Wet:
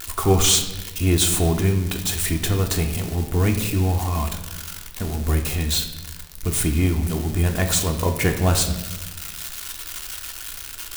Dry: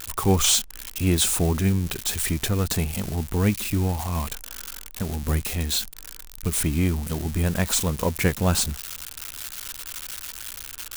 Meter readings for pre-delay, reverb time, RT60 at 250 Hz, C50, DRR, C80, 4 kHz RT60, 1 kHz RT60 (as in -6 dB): 3 ms, 1.1 s, 1.4 s, 8.5 dB, 3.0 dB, 10.5 dB, 0.85 s, 0.90 s